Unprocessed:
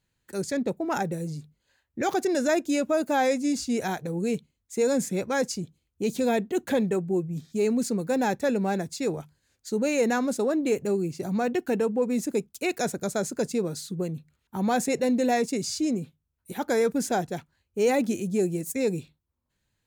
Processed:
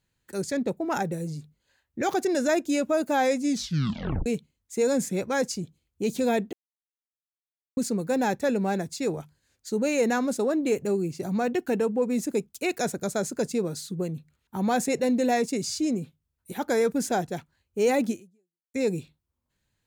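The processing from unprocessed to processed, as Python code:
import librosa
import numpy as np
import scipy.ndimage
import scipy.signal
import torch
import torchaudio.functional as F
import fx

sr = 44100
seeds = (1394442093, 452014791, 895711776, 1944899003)

y = fx.edit(x, sr, fx.tape_stop(start_s=3.49, length_s=0.77),
    fx.silence(start_s=6.53, length_s=1.24),
    fx.fade_out_span(start_s=18.1, length_s=0.64, curve='exp'), tone=tone)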